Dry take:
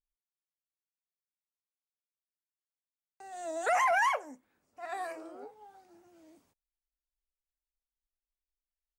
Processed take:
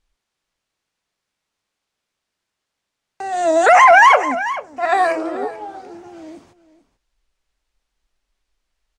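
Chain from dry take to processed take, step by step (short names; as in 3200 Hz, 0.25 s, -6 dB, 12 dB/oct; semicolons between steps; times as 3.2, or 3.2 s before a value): air absorption 76 m; echo 0.438 s -17 dB; maximiser +23.5 dB; gain -1 dB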